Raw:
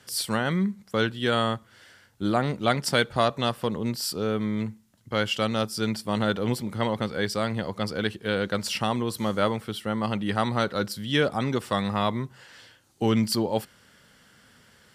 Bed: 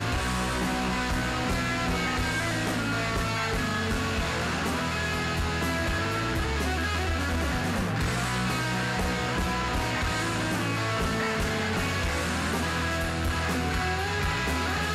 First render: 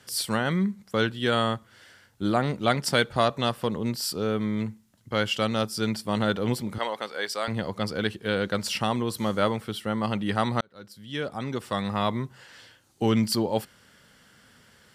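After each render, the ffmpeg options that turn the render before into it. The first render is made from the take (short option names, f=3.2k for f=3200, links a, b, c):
-filter_complex "[0:a]asettb=1/sr,asplit=3[a][b][c];[a]atrim=end=6.784[d];[b]atrim=start=6.78:end=7.48,asetpts=PTS-STARTPTS,afade=t=in:d=0.004:c=qsin,afade=t=out:st=0.696:d=0.004:c=qsin,highpass=550[e];[c]atrim=start=7.476[f];[d][e]acrossfade=d=0.004:c1=hsin:c2=qsin[g];[g][f]acrossfade=d=0.004:c1=qsin:c2=hsin,asplit=2[h][i];[h]atrim=end=10.61,asetpts=PTS-STARTPTS,afade=t=out:st=10.606:d=0.004:c=hsin[j];[i]atrim=start=10.61,asetpts=PTS-STARTPTS,afade=t=in:d=1.55[k];[j][k]concat=n=2:v=0:a=1"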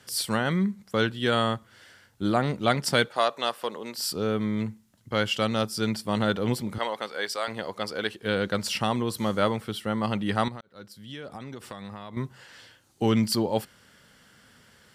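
-filter_complex "[0:a]asettb=1/sr,asplit=3[a][b][c];[a]atrim=end=3.084[d];[b]atrim=start=3.08:end=3.98,asetpts=PTS-STARTPTS,afade=t=in:d=0.004:c=qsin,afade=t=out:st=0.896:d=0.004:c=qsin,highpass=470[e];[c]atrim=start=3.976[f];[d][e]acrossfade=d=0.004:c1=hsin:c2=qsin[g];[g][f]acrossfade=d=0.004:c1=qsin:c2=hsin,asettb=1/sr,asplit=3[h][i][j];[h]atrim=end=7.364[k];[i]atrim=start=7.36:end=8.23,asetpts=PTS-STARTPTS,afade=t=in:d=0.004:c=qsin,afade=t=out:st=0.866:d=0.004:c=qsin,bass=f=250:g=-13,treble=f=4k:g=0[l];[j]atrim=start=8.226[m];[k][l]acrossfade=d=0.004:c1=hsin:c2=qsin[n];[n][m]acrossfade=d=0.004:c1=qsin:c2=hsin,asettb=1/sr,asplit=3[o][p][q];[o]atrim=end=10.484[r];[p]atrim=start=10.48:end=12.17,asetpts=PTS-STARTPTS,afade=t=in:d=0.004:c=qsin,afade=t=out:st=1.686:d=0.004:c=qsin,acompressor=threshold=-34dB:ratio=16:attack=3.2:release=140:knee=1:detection=peak[s];[q]atrim=start=12.166[t];[r][s]acrossfade=d=0.004:c1=hsin:c2=qsin[u];[u][t]acrossfade=d=0.004:c1=qsin:c2=hsin"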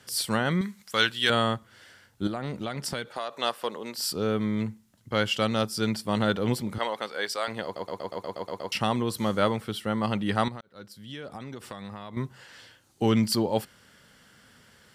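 -filter_complex "[0:a]asettb=1/sr,asplit=3[a][b][c];[a]atrim=end=0.614[d];[b]atrim=start=0.61:end=1.3,asetpts=PTS-STARTPTS,afade=t=in:d=0.004:c=qsin,afade=t=out:st=0.686:d=0.004:c=qsin,tiltshelf=f=890:g=-9.5[e];[c]atrim=start=1.296[f];[d][e]acrossfade=d=0.004:c1=hsin:c2=qsin[g];[g][f]acrossfade=d=0.004:c1=qsin:c2=hsin,asettb=1/sr,asplit=3[h][i][j];[h]atrim=end=2.274[k];[i]atrim=start=2.27:end=3.37,asetpts=PTS-STARTPTS,afade=t=in:d=0.004:c=qsin,afade=t=out:st=1.096:d=0.004:c=qsin,acompressor=threshold=-28dB:ratio=6:attack=3.2:release=140:knee=1:detection=peak[l];[j]atrim=start=3.366[m];[k][l]acrossfade=d=0.004:c1=hsin:c2=qsin[n];[n][m]acrossfade=d=0.004:c1=qsin:c2=hsin,asplit=10[o][p][q][r][s][t][u][v][w][x];[o]atrim=end=7.762[y];[p]atrim=start=7.638:end=7.762[z];[q]atrim=start=7.638:end=7.762[aa];[r]atrim=start=7.638:end=7.762[ab];[s]atrim=start=7.638:end=7.762[ac];[t]atrim=start=7.638:end=7.762[ad];[u]atrim=start=7.638:end=7.762[ae];[v]atrim=start=7.638:end=7.762[af];[w]atrim=start=7.638:end=7.762[ag];[x]atrim=start=8.718[ah];[y][z]acrossfade=d=0.004:c1=hsin:c2=hsin[ai];[ai][aa]acrossfade=d=0.004:c1=hsin:c2=hsin[aj];[aj][ab]acrossfade=d=0.004:c1=hsin:c2=hsin[ak];[ak][ac]acrossfade=d=0.004:c1=hsin:c2=hsin[al];[al][ad]acrossfade=d=0.004:c1=hsin:c2=hsin[am];[am][ae]acrossfade=d=0.004:c1=hsin:c2=hsin[an];[an][af]acrossfade=d=0.004:c1=hsin:c2=hsin[ao];[ao][ag]acrossfade=d=0.004:c1=hsin:c2=hsin[ap];[ap][ah]acrossfade=d=0.004:c1=hsin:c2=hsin"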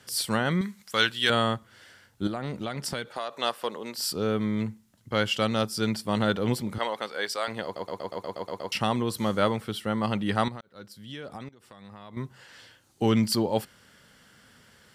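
-filter_complex "[0:a]asplit=2[a][b];[a]atrim=end=11.49,asetpts=PTS-STARTPTS,afade=t=out:st=11.486:d=0.004:c=hsin:silence=0.1[c];[b]atrim=start=11.49,asetpts=PTS-STARTPTS,afade=t=in:d=1.54:c=qsin:silence=0.1[d];[c][d]concat=n=2:v=0:a=1"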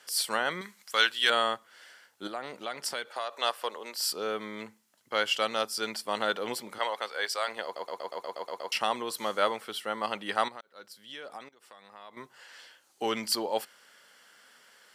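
-af "highpass=540,bandreject=f=3.7k:w=28"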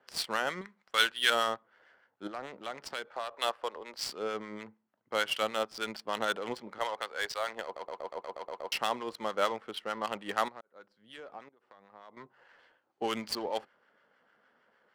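-filter_complex "[0:a]adynamicsmooth=sensitivity=6.5:basefreq=1.2k,acrossover=split=1000[a][b];[a]aeval=exprs='val(0)*(1-0.5/2+0.5/2*cos(2*PI*6.6*n/s))':c=same[c];[b]aeval=exprs='val(0)*(1-0.5/2-0.5/2*cos(2*PI*6.6*n/s))':c=same[d];[c][d]amix=inputs=2:normalize=0"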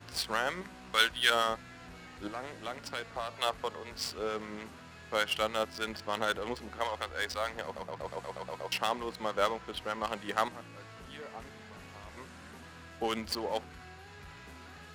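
-filter_complex "[1:a]volume=-22.5dB[a];[0:a][a]amix=inputs=2:normalize=0"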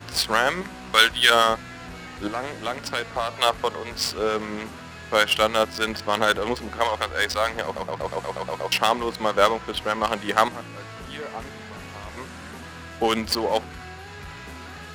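-af "volume=11dB,alimiter=limit=-1dB:level=0:latency=1"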